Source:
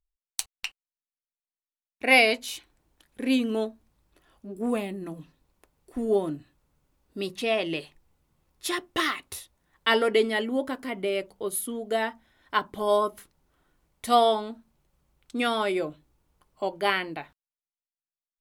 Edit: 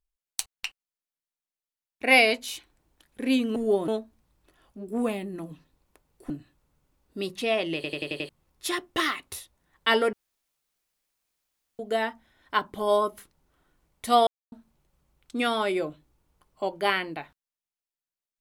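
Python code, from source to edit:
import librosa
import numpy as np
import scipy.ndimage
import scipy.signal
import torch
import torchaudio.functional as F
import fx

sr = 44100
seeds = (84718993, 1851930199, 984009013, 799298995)

y = fx.edit(x, sr, fx.move(start_s=5.98, length_s=0.32, to_s=3.56),
    fx.stutter_over(start_s=7.75, slice_s=0.09, count=6),
    fx.room_tone_fill(start_s=10.13, length_s=1.66),
    fx.silence(start_s=14.27, length_s=0.25), tone=tone)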